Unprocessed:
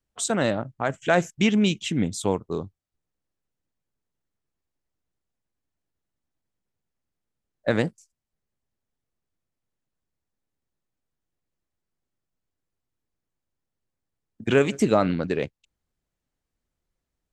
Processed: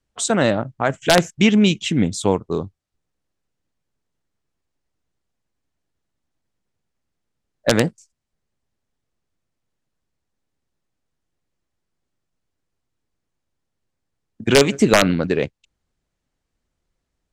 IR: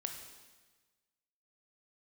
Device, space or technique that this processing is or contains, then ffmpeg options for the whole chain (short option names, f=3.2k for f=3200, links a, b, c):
overflowing digital effects unit: -af "aeval=exprs='(mod(2.66*val(0)+1,2)-1)/2.66':c=same,lowpass=8.9k,volume=6dB"